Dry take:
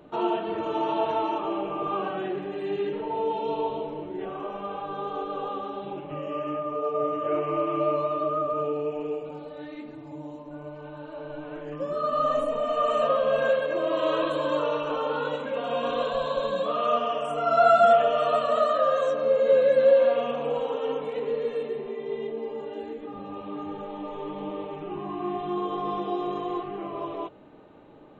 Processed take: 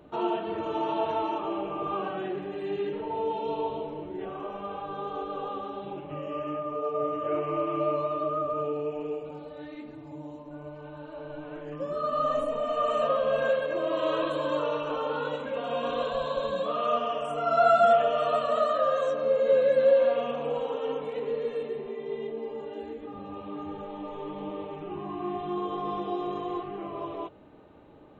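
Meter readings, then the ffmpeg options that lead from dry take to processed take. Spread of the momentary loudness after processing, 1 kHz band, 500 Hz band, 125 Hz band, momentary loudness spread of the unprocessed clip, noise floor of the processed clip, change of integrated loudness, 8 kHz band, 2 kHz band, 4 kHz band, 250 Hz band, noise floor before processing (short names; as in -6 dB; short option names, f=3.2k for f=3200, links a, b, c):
17 LU, -2.5 dB, -2.5 dB, -1.0 dB, 17 LU, -44 dBFS, -2.5 dB, n/a, -2.5 dB, -2.5 dB, -2.0 dB, -42 dBFS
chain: -af "equalizer=f=69:w=1.5:g=9,volume=-2.5dB"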